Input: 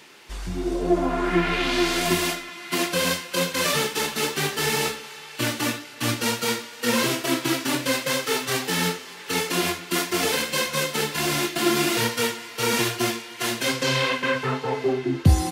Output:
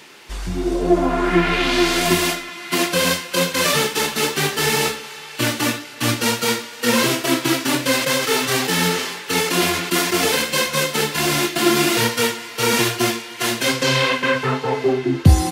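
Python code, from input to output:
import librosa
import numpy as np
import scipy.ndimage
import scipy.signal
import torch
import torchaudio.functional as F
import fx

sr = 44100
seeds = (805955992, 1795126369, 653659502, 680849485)

y = fx.sustainer(x, sr, db_per_s=48.0, at=(7.91, 10.14))
y = F.gain(torch.from_numpy(y), 5.0).numpy()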